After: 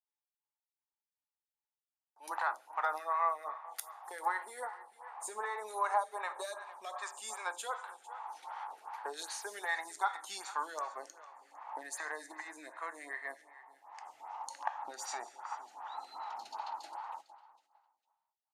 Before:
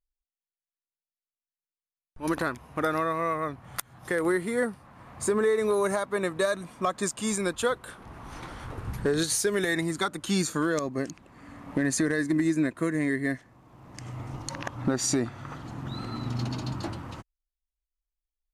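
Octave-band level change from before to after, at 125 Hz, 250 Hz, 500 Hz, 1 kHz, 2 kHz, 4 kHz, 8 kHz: under -40 dB, -33.0 dB, -17.5 dB, -1.5 dB, -8.5 dB, -12.0 dB, -13.0 dB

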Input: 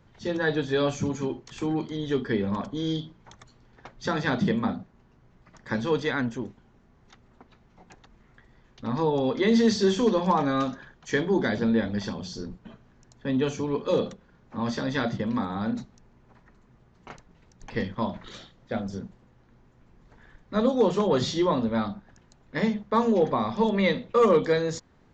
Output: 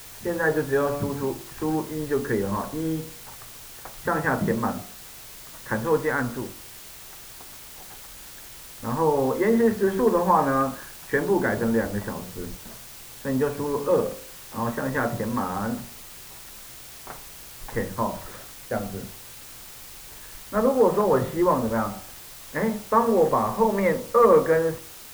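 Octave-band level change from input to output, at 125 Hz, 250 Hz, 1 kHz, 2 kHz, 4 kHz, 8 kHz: +0.5 dB, -0.5 dB, +5.0 dB, +2.5 dB, -5.5 dB, no reading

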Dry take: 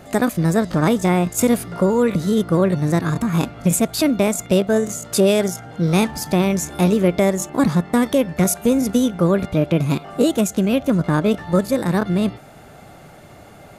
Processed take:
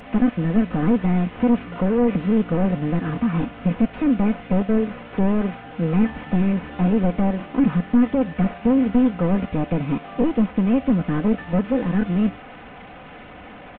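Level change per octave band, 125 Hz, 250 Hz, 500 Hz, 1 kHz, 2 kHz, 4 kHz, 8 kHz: -3.0 dB, -0.5 dB, -6.5 dB, -4.5 dB, -5.5 dB, under -10 dB, under -40 dB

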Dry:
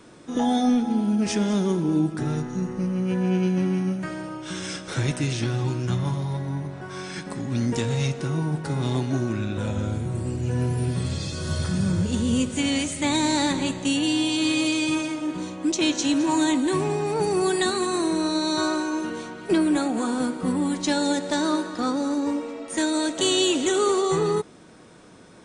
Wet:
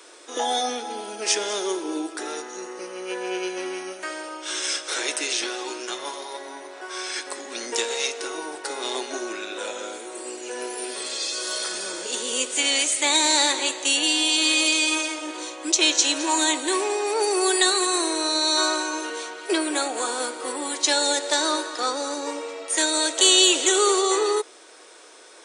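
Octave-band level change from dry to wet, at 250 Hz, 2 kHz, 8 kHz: -9.0 dB, +5.5 dB, +10.0 dB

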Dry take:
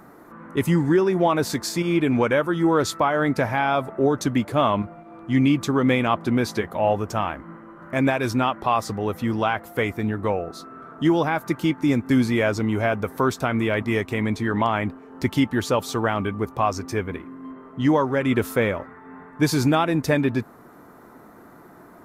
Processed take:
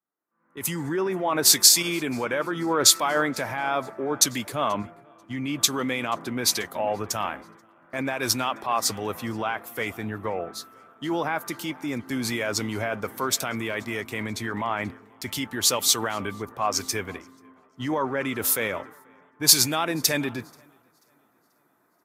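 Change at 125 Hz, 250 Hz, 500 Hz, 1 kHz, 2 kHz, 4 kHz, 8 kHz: -10.5 dB, -9.0 dB, -6.5 dB, -4.5 dB, -2.5 dB, +9.0 dB, +15.0 dB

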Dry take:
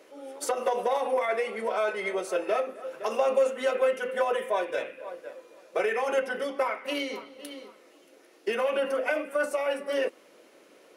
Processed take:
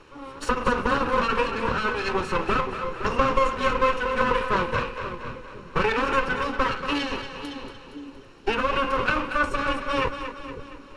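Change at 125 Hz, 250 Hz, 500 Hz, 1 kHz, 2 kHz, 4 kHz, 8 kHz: no reading, +9.5 dB, -1.0 dB, +8.0 dB, +7.0 dB, +7.0 dB, -2.0 dB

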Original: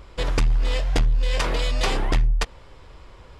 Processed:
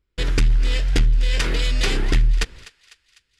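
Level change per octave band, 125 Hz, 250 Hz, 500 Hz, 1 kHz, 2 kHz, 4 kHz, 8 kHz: +3.0 dB, +3.0 dB, -2.0 dB, -5.5 dB, +3.0 dB, +3.0 dB, +3.0 dB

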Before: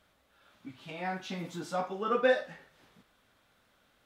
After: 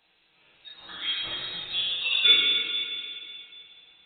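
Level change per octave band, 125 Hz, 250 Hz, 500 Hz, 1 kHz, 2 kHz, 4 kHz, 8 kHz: under -10 dB, -11.0 dB, -16.0 dB, -9.0 dB, +7.0 dB, +26.0 dB, under -25 dB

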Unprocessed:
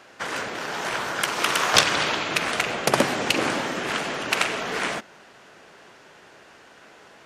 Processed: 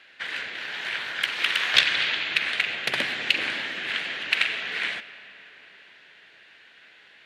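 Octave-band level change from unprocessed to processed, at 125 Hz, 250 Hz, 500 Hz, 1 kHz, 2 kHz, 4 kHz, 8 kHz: -13.5 dB, -14.0 dB, -14.0 dB, -11.5 dB, +1.0 dB, +1.0 dB, -13.5 dB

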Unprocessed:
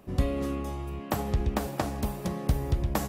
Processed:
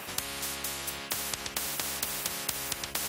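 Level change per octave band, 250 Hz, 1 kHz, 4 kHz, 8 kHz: -14.5 dB, -5.0 dB, +10.5 dB, +12.5 dB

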